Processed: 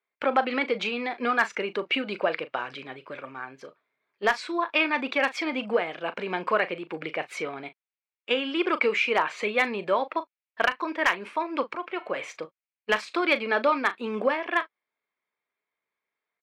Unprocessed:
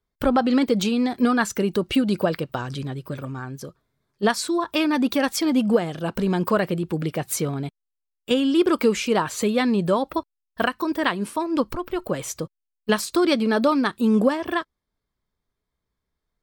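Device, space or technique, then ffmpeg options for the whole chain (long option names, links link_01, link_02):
megaphone: -filter_complex "[0:a]asettb=1/sr,asplit=3[link_01][link_02][link_03];[link_01]atrim=end=11.834[link_04];[link_02]atrim=start=11.83:end=12.25,asetpts=PTS-STARTPTS,afade=type=in:duration=0.004:curve=qsin,afade=type=out:start_time=0.416:duration=0.004:curve=qsin,bandreject=frequency=147.1:width_type=h:width=4,bandreject=frequency=294.2:width_type=h:width=4,bandreject=frequency=441.3:width_type=h:width=4,bandreject=frequency=588.4:width_type=h:width=4,bandreject=frequency=735.5:width_type=h:width=4,bandreject=frequency=882.6:width_type=h:width=4,bandreject=frequency=1029.7:width_type=h:width=4,bandreject=frequency=1176.8:width_type=h:width=4,bandreject=frequency=1323.9:width_type=h:width=4,bandreject=frequency=1471:width_type=h:width=4,bandreject=frequency=1618.1:width_type=h:width=4,bandreject=frequency=1765.2:width_type=h:width=4,bandreject=frequency=1912.3:width_type=h:width=4,bandreject=frequency=2059.4:width_type=h:width=4,bandreject=frequency=2206.5:width_type=h:width=4,bandreject=frequency=2353.6:width_type=h:width=4,bandreject=frequency=2500.7:width_type=h:width=4,bandreject=frequency=2647.8:width_type=h:width=4,bandreject=frequency=2794.9:width_type=h:width=4,bandreject=frequency=2942:width_type=h:width=4,bandreject=frequency=3089.1:width_type=h:width=4,bandreject=frequency=3236.2:width_type=h:width=4,bandreject=frequency=3383.3:width_type=h:width=4,bandreject=frequency=3530.4:width_type=h:width=4,bandreject=frequency=3677.5:width_type=h:width=4,bandreject=frequency=3824.6:width_type=h:width=4,bandreject=frequency=3971.7:width_type=h:width=4,bandreject=frequency=4118.8:width_type=h:width=4,bandreject=frequency=4265.9:width_type=h:width=4,bandreject=frequency=4413:width_type=h:width=4[link_05];[link_03]atrim=start=12.246[link_06];[link_04][link_05]acrossfade=duration=0.004:curve1=hsin:curve2=qsin[link_07];[link_07][link_06]acrossfade=duration=0.004:curve1=qsin:curve2=hsin,highpass=510,lowpass=2800,equalizer=frequency=2300:width_type=o:width=0.57:gain=11,asoftclip=type=hard:threshold=-9.5dB,asplit=2[link_08][link_09];[link_09]adelay=38,volume=-13.5dB[link_10];[link_08][link_10]amix=inputs=2:normalize=0,volume=-1dB"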